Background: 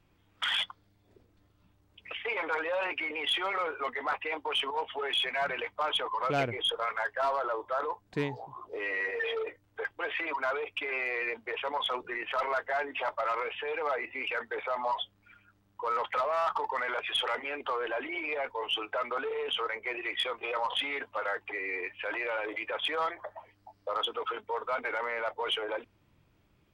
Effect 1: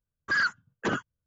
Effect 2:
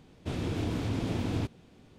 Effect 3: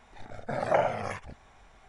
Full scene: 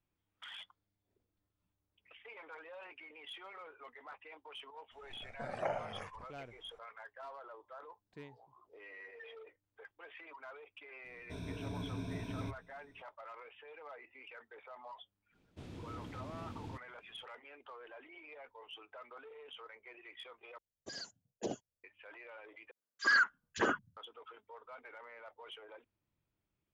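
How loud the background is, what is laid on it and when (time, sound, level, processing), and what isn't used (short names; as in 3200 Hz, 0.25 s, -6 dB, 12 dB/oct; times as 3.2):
background -19.5 dB
4.91 add 3 -12 dB
11.04 add 2 -13.5 dB + ripple EQ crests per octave 1.6, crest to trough 16 dB
15.31 add 2 -16 dB, fades 0.05 s
20.58 replace with 1 -14.5 dB + EQ curve 160 Hz 0 dB, 280 Hz +4 dB, 710 Hz +11 dB, 1300 Hz -21 dB, 2500 Hz -3 dB, 6400 Hz +11 dB, 9200 Hz +8 dB
22.71 replace with 1 -1.5 dB + three bands offset in time highs, mids, lows 50/580 ms, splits 240/2800 Hz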